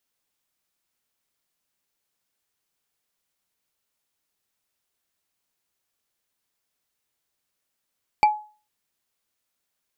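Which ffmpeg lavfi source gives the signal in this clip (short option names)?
-f lavfi -i "aevalsrc='0.316*pow(10,-3*t/0.37)*sin(2*PI*847*t)+0.126*pow(10,-3*t/0.11)*sin(2*PI*2335.2*t)+0.0501*pow(10,-3*t/0.049)*sin(2*PI*4577.2*t)+0.02*pow(10,-3*t/0.027)*sin(2*PI*7566.3*t)+0.00794*pow(10,-3*t/0.017)*sin(2*PI*11299*t)':d=0.45:s=44100"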